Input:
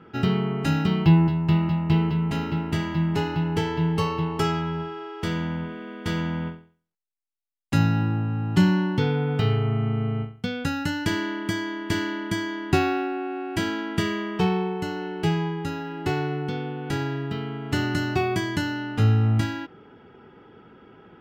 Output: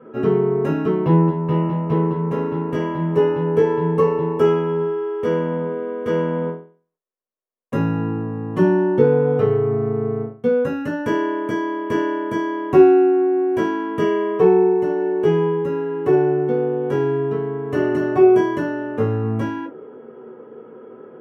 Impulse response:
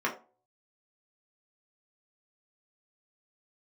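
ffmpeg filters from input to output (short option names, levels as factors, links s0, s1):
-filter_complex "[0:a]equalizer=f=500:t=o:w=1:g=12,equalizer=f=2000:t=o:w=1:g=-6,equalizer=f=4000:t=o:w=1:g=-10[s0];[1:a]atrim=start_sample=2205,atrim=end_sample=3528[s1];[s0][s1]afir=irnorm=-1:irlink=0,volume=0.531"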